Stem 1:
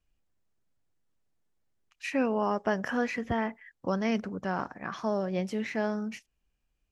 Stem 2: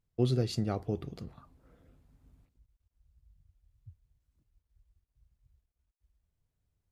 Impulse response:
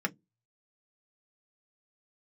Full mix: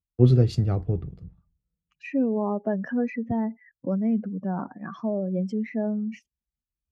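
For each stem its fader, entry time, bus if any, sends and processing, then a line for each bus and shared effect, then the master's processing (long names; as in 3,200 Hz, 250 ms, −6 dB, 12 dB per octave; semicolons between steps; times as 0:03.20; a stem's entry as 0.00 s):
0.0 dB, 0.00 s, no send, expanding power law on the bin magnitudes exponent 2; high-pass filter 140 Hz 12 dB per octave; parametric band 1,600 Hz −4 dB 2 octaves
−1.5 dB, 0.00 s, send −18 dB, low-pass filter 2,500 Hz 6 dB per octave; multiband upward and downward expander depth 100%; automatic ducking −22 dB, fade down 1.10 s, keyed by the first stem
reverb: on, RT60 0.15 s, pre-delay 3 ms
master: low-shelf EQ 340 Hz +8.5 dB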